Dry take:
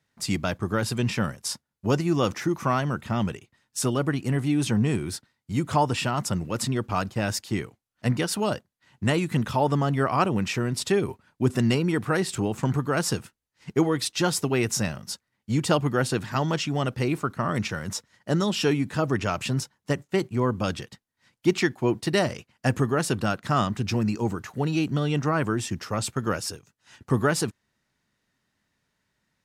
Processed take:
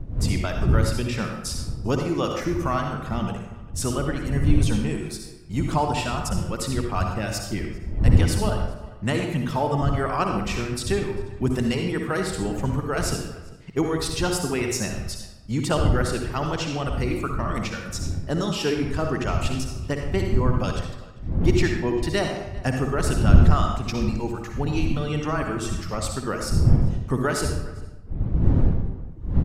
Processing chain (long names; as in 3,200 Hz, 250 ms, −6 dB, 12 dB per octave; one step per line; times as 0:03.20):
wind on the microphone 97 Hz −23 dBFS
reverb reduction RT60 1.1 s
slap from a distant wall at 68 metres, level −20 dB
on a send at −2.5 dB: convolution reverb RT60 0.90 s, pre-delay 52 ms
on the sum: level −1.5 dB